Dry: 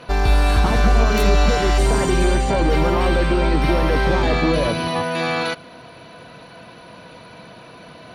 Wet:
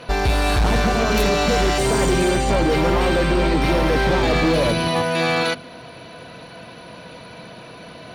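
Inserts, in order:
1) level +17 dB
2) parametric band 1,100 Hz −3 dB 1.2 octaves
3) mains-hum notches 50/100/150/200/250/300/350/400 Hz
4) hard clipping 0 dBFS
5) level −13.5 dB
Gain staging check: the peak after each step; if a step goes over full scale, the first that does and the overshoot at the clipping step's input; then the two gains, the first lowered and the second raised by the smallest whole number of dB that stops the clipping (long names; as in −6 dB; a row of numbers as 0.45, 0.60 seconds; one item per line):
+12.5, +12.0, +10.0, 0.0, −13.5 dBFS
step 1, 10.0 dB
step 1 +7 dB, step 5 −3.5 dB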